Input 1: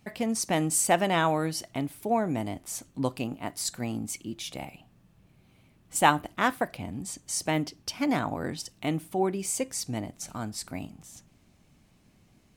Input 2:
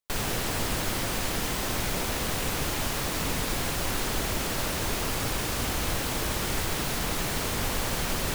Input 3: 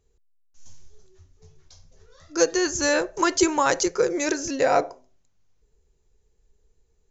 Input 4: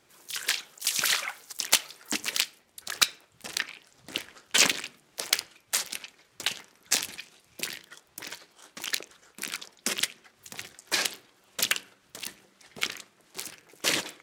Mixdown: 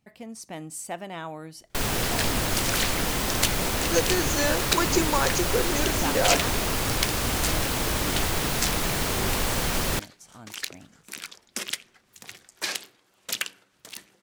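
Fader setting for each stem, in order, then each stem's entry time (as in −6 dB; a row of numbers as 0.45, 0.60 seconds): −11.5, +3.0, −4.5, −3.0 decibels; 0.00, 1.65, 1.55, 1.70 seconds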